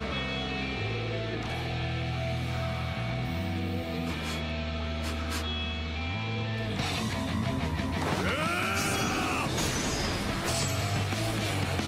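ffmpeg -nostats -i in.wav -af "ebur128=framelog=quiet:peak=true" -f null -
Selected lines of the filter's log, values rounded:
Integrated loudness:
  I:         -30.6 LUFS
  Threshold: -40.6 LUFS
Loudness range:
  LRA:         3.8 LU
  Threshold: -50.7 LUFS
  LRA low:   -32.4 LUFS
  LRA high:  -28.6 LUFS
True peak:
  Peak:      -16.4 dBFS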